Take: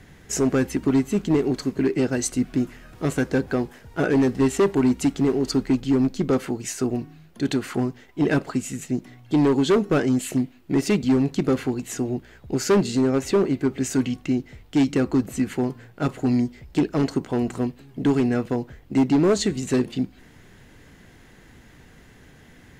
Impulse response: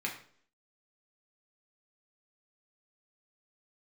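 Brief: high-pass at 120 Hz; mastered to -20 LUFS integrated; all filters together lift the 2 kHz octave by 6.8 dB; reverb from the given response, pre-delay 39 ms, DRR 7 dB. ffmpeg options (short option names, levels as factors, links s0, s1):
-filter_complex "[0:a]highpass=120,equalizer=f=2000:t=o:g=9,asplit=2[s0][s1];[1:a]atrim=start_sample=2205,adelay=39[s2];[s1][s2]afir=irnorm=-1:irlink=0,volume=0.266[s3];[s0][s3]amix=inputs=2:normalize=0,volume=1.33"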